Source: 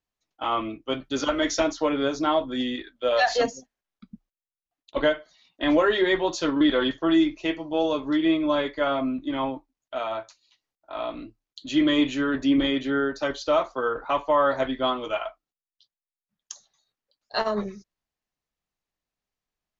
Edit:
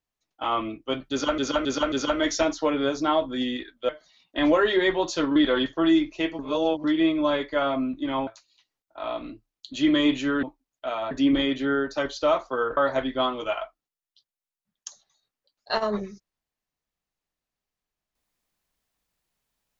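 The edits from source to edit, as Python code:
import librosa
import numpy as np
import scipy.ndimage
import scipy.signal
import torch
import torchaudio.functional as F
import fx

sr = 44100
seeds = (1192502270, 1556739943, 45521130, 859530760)

y = fx.edit(x, sr, fx.repeat(start_s=1.11, length_s=0.27, count=4),
    fx.cut(start_s=3.08, length_s=2.06),
    fx.reverse_span(start_s=7.64, length_s=0.45),
    fx.move(start_s=9.52, length_s=0.68, to_s=12.36),
    fx.cut(start_s=14.02, length_s=0.39), tone=tone)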